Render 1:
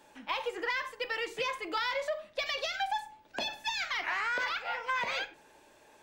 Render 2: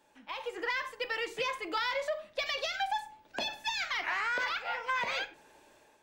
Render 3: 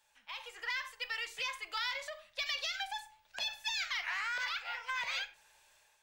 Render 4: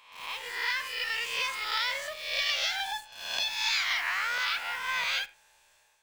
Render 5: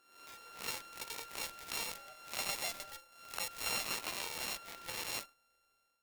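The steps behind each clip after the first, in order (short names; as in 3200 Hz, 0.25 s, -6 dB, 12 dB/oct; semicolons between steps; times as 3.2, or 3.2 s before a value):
AGC gain up to 8 dB; gain -8 dB
passive tone stack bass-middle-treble 10-0-10; gain +1.5 dB
spectral swells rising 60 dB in 0.87 s; in parallel at -6 dB: bit-crush 7-bit
sample sorter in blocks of 32 samples; added harmonics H 7 -13 dB, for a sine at -15.5 dBFS; gain -7 dB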